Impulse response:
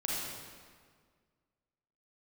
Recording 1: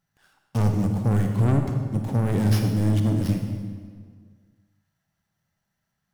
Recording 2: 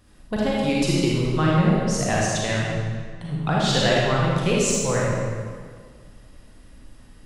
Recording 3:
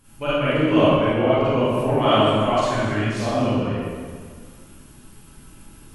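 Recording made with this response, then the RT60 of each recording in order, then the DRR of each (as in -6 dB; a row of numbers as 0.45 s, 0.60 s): 2; 1.8 s, 1.8 s, 1.8 s; 4.0 dB, -5.0 dB, -12.0 dB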